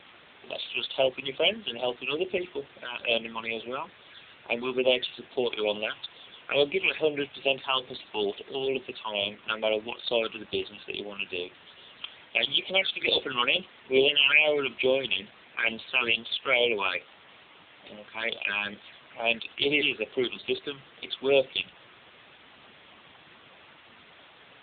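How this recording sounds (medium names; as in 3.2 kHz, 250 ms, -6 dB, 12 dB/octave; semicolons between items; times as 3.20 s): phasing stages 8, 2.3 Hz, lowest notch 540–1800 Hz; a quantiser's noise floor 8-bit, dither triangular; AMR-NB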